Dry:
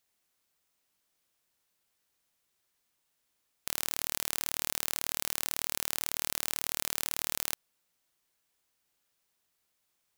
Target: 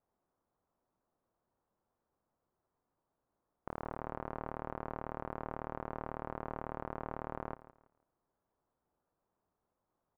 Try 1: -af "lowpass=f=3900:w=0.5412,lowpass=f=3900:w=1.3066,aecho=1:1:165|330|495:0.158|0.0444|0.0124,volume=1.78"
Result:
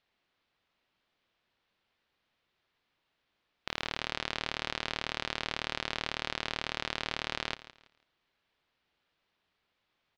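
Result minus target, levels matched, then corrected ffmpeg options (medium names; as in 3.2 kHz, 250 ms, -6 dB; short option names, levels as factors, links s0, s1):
1 kHz band -6.0 dB
-af "lowpass=f=1100:w=0.5412,lowpass=f=1100:w=1.3066,aecho=1:1:165|330|495:0.158|0.0444|0.0124,volume=1.78"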